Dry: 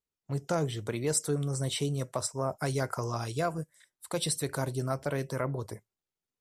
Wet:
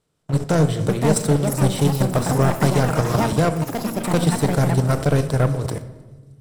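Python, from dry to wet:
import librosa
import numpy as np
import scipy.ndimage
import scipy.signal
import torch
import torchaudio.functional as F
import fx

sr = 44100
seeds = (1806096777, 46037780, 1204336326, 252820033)

y = fx.bin_compress(x, sr, power=0.6)
y = fx.high_shelf(y, sr, hz=4200.0, db=-4.0)
y = fx.level_steps(y, sr, step_db=14)
y = fx.low_shelf(y, sr, hz=230.0, db=10.0)
y = fx.echo_wet_highpass(y, sr, ms=310, feedback_pct=70, hz=4900.0, wet_db=-15.0)
y = fx.leveller(y, sr, passes=3)
y = fx.room_shoebox(y, sr, seeds[0], volume_m3=1000.0, walls='mixed', distance_m=0.48)
y = fx.echo_pitch(y, sr, ms=648, semitones=5, count=3, db_per_echo=-6.0)
y = fx.band_squash(y, sr, depth_pct=70, at=(2.29, 3.33))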